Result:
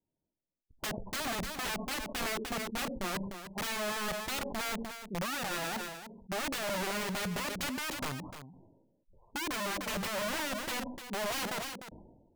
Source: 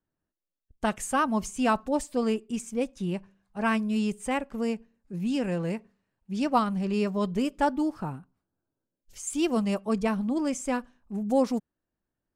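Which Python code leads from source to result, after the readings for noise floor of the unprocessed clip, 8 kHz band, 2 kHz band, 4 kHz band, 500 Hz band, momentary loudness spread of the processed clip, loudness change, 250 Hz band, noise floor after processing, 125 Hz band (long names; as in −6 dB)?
below −85 dBFS, 0.0 dB, +0.5 dB, +5.0 dB, −9.0 dB, 7 LU, −6.5 dB, −13.5 dB, below −85 dBFS, −8.0 dB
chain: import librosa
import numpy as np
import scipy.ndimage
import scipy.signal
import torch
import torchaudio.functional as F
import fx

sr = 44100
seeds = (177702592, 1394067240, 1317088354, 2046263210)

y = scipy.signal.sosfilt(scipy.signal.cheby1(5, 1.0, 990.0, 'lowpass', fs=sr, output='sos'), x)
y = fx.env_lowpass_down(y, sr, base_hz=470.0, full_db=-22.5)
y = fx.spec_gate(y, sr, threshold_db=-30, keep='strong')
y = fx.low_shelf(y, sr, hz=81.0, db=-8.0)
y = fx.spec_topn(y, sr, count=32)
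y = (np.mod(10.0 ** (30.5 / 20.0) * y + 1.0, 2.0) - 1.0) / 10.0 ** (30.5 / 20.0)
y = y + 10.0 ** (-11.0 / 20.0) * np.pad(y, (int(301 * sr / 1000.0), 0))[:len(y)]
y = fx.sustainer(y, sr, db_per_s=48.0)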